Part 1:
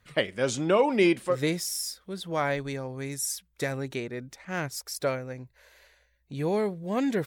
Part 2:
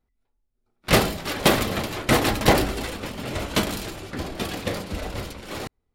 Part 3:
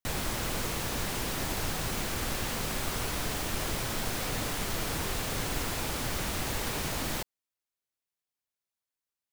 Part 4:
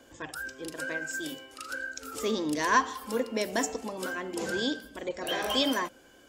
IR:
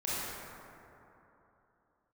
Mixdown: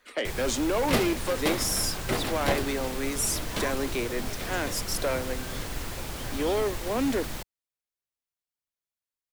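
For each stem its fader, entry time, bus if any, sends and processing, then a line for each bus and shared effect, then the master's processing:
-8.0 dB, 0.00 s, no send, peak limiter -21 dBFS, peak gain reduction 9.5 dB; steep high-pass 230 Hz 72 dB/octave; sine folder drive 9 dB, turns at -14.5 dBFS
-3.0 dB, 0.00 s, no send, auto duck -8 dB, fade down 1.40 s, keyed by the first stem
-4.5 dB, 0.20 s, no send, bass shelf 91 Hz +7 dB
-14.5 dB, 0.90 s, no send, none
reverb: none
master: none

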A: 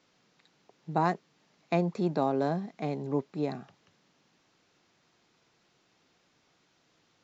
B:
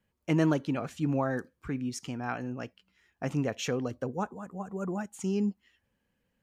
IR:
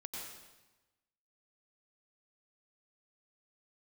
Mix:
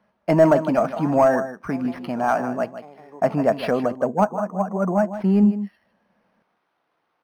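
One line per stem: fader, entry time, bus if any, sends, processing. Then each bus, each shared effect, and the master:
-10.5 dB, 0.00 s, no send, echo send -12 dB, auto duck -9 dB, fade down 0.30 s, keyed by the second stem
+1.0 dB, 0.00 s, no send, echo send -12.5 dB, small resonant body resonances 200/630 Hz, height 13 dB, ringing for 50 ms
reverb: none
echo: delay 155 ms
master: peaking EQ 920 Hz +7.5 dB 1.8 oct; overdrive pedal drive 14 dB, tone 1.8 kHz, clips at -3.5 dBFS; decimation joined by straight lines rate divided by 6×

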